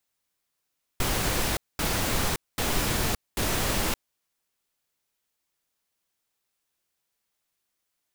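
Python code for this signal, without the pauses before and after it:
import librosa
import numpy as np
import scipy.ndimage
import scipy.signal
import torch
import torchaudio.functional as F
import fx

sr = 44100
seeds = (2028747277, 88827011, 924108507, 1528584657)

y = fx.noise_burst(sr, seeds[0], colour='pink', on_s=0.57, off_s=0.22, bursts=4, level_db=-26.0)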